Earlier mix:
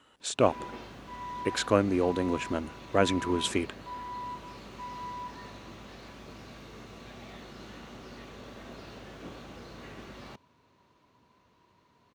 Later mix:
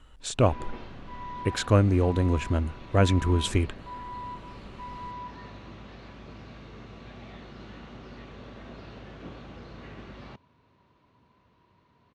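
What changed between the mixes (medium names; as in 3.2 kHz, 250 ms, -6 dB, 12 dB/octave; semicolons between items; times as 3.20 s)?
background: add band-pass 170–4000 Hz; master: remove high-pass 230 Hz 12 dB/octave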